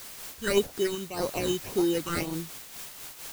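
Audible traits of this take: aliases and images of a low sample rate 3400 Hz, jitter 0%; phasing stages 8, 1.8 Hz, lowest notch 630–2700 Hz; a quantiser's noise floor 8-bit, dither triangular; noise-modulated level

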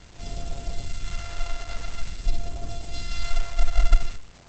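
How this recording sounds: a buzz of ramps at a fixed pitch in blocks of 64 samples; phasing stages 2, 0.48 Hz, lowest notch 210–1900 Hz; a quantiser's noise floor 8-bit, dither none; Opus

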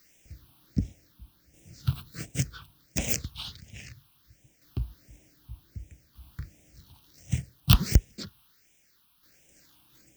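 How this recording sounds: a quantiser's noise floor 10-bit, dither triangular; tremolo saw down 0.65 Hz, depth 50%; phasing stages 6, 1.4 Hz, lowest notch 510–1200 Hz

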